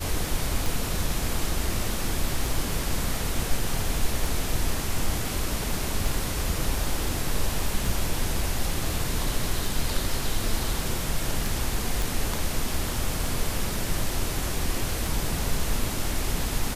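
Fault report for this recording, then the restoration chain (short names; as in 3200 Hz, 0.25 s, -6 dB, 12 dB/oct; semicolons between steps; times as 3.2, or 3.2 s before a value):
tick 33 1/3 rpm
12.02 pop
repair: de-click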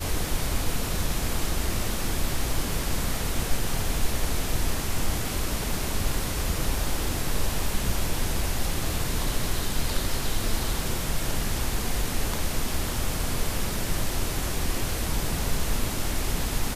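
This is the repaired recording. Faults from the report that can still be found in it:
none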